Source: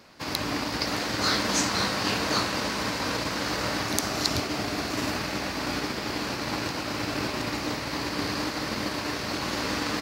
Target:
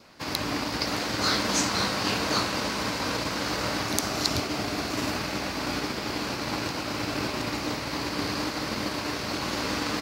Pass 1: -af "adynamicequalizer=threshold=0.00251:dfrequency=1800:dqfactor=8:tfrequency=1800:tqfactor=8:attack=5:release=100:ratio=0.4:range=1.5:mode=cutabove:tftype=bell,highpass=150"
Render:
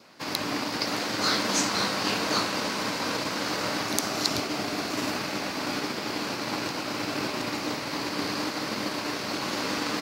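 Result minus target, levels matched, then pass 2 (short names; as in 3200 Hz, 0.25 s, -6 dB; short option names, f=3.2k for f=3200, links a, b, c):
125 Hz band -4.5 dB
-af "adynamicequalizer=threshold=0.00251:dfrequency=1800:dqfactor=8:tfrequency=1800:tqfactor=8:attack=5:release=100:ratio=0.4:range=1.5:mode=cutabove:tftype=bell"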